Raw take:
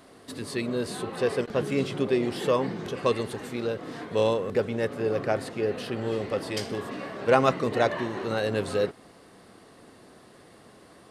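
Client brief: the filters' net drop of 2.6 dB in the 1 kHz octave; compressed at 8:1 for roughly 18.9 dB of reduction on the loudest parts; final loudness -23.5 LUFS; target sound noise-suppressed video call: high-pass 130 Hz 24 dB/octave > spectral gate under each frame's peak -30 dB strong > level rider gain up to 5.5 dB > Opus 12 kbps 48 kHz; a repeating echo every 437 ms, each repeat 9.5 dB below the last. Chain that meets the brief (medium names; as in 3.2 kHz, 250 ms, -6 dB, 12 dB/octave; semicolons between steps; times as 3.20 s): peaking EQ 1 kHz -3.5 dB; compression 8:1, threshold -37 dBFS; high-pass 130 Hz 24 dB/octave; feedback delay 437 ms, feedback 33%, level -9.5 dB; spectral gate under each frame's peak -30 dB strong; level rider gain up to 5.5 dB; trim +18 dB; Opus 12 kbps 48 kHz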